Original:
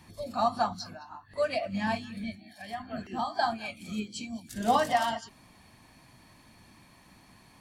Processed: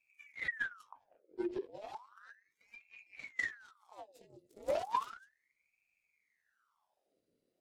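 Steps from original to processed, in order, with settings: 0.38–0.64 spectral gain 1200–6300 Hz -9 dB; 0.92–1.6 tilt -3 dB/oct; added harmonics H 6 -10 dB, 7 -19 dB, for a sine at -6 dBFS; passive tone stack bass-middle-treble 10-0-1; ring modulator with a swept carrier 1400 Hz, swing 75%, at 0.34 Hz; gain +7 dB

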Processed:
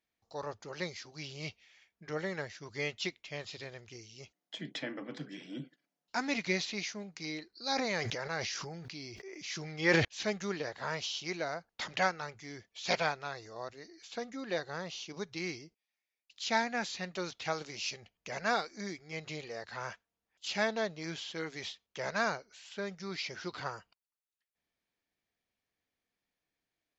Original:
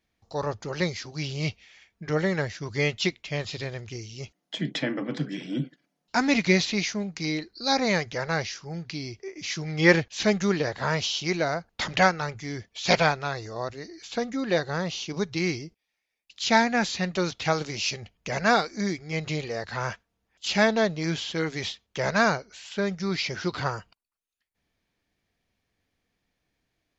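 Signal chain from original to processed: low shelf 200 Hz -10.5 dB; 7.61–10.05 sustainer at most 23 dB/s; gain -9 dB

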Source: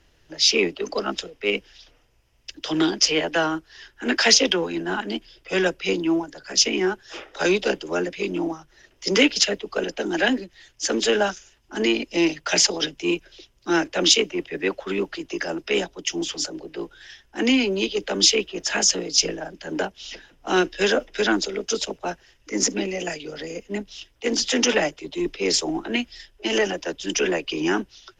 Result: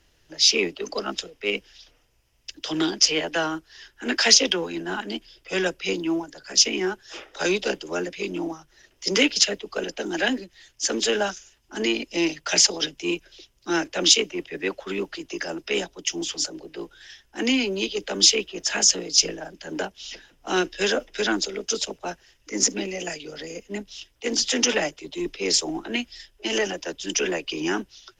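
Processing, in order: high shelf 4200 Hz +7 dB; gain -3.5 dB

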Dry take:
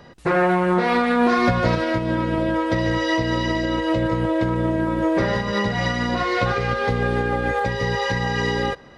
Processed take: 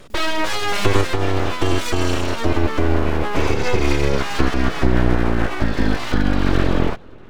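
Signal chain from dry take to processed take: speed glide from 181% -> 65%; resonant low shelf 320 Hz +9.5 dB, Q 1.5; full-wave rectifier

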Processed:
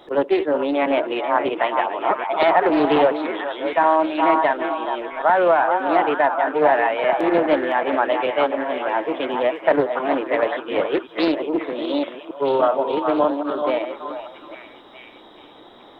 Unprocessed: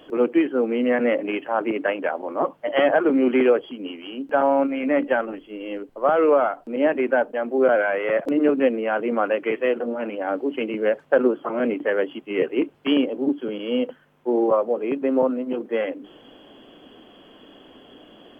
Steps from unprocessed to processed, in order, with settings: reverse delay 0.429 s, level -9 dB; bell 860 Hz +7 dB 0.52 oct; varispeed +15%; delay with a stepping band-pass 0.423 s, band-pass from 1000 Hz, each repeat 0.7 oct, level -3 dB; Doppler distortion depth 0.2 ms

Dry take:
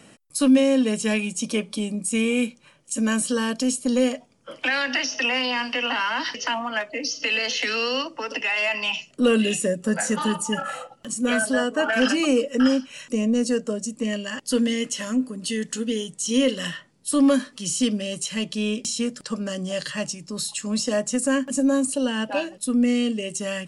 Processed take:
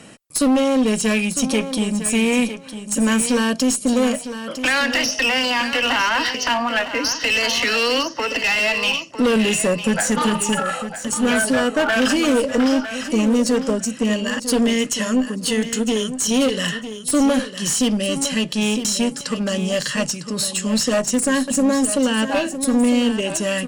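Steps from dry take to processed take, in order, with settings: in parallel at +2 dB: limiter -16.5 dBFS, peak gain reduction 7.5 dB; on the sum: one-sided clip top -18 dBFS, bottom -10 dBFS; feedback echo 0.954 s, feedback 18%, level -11 dB

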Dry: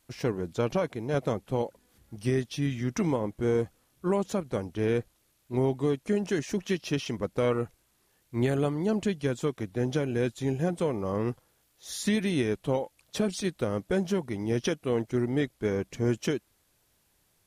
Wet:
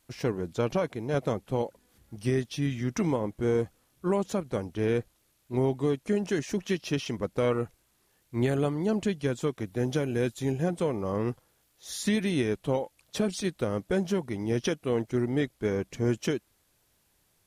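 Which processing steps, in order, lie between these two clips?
9.66–10.52 high shelf 11000 Hz +10 dB

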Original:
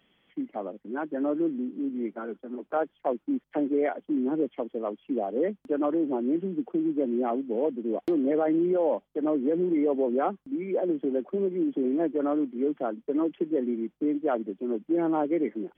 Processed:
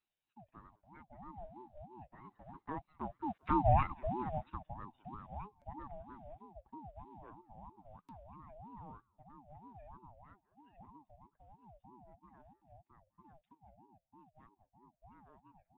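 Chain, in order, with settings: Doppler pass-by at 3.73, 6 m/s, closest 1.4 m; bell 73 Hz -14 dB 2.4 oct; thinning echo 0.199 s, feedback 44%, high-pass 790 Hz, level -21 dB; rotary speaker horn 1.1 Hz; ring modulator with a swept carrier 470 Hz, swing 35%, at 3.1 Hz; gain +4.5 dB

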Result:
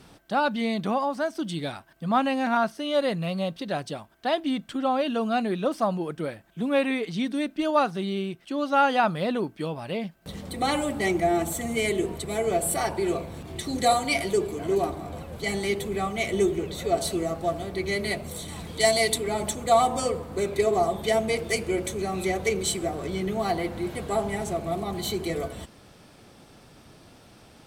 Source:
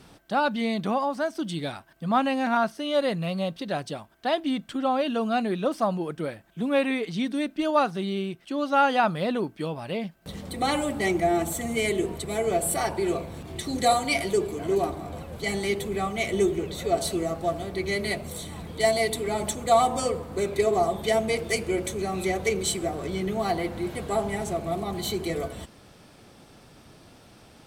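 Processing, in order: 18.48–19.18 bell 6600 Hz +7 dB 2.6 oct

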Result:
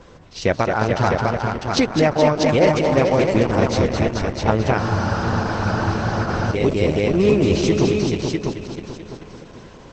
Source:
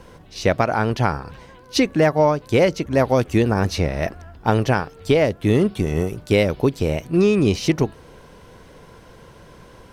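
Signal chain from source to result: multi-head echo 0.217 s, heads all three, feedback 42%, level -6.5 dB; spectral freeze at 4.8, 1.74 s; Opus 10 kbps 48000 Hz

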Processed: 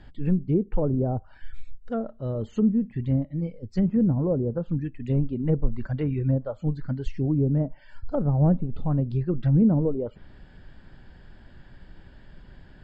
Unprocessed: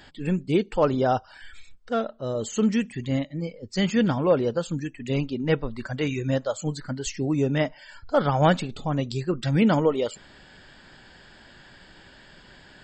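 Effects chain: treble ducked by the level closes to 560 Hz, closed at -19 dBFS; RIAA curve playback; gain -6.5 dB

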